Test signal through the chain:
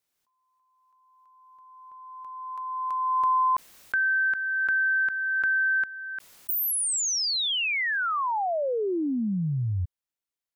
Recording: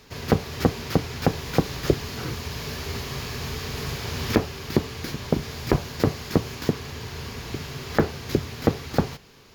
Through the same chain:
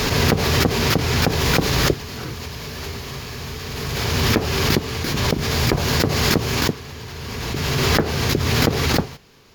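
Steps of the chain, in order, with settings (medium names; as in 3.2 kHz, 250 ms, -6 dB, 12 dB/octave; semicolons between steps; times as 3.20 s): swell ahead of each attack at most 21 dB/s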